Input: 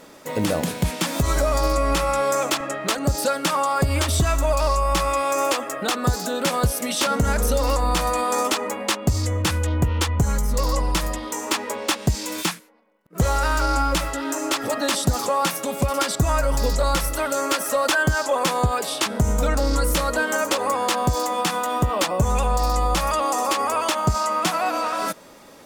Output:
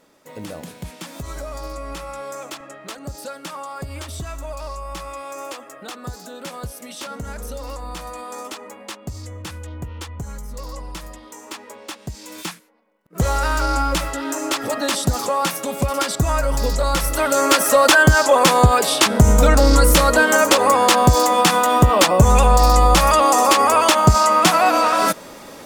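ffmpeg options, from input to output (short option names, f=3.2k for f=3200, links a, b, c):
-af "volume=8dB,afade=t=in:st=12.14:d=1.15:silence=0.251189,afade=t=in:st=16.91:d=0.67:silence=0.446684"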